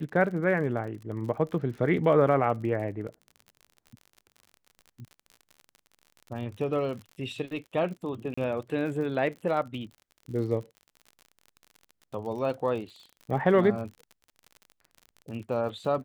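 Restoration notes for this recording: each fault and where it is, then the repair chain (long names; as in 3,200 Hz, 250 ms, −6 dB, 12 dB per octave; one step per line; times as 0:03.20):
surface crackle 51 per second −38 dBFS
0:08.34–0:08.38: drop-out 35 ms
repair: click removal
repair the gap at 0:08.34, 35 ms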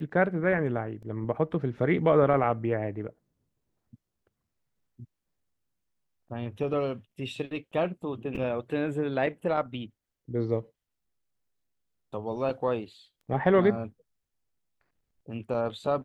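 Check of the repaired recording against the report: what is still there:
none of them is left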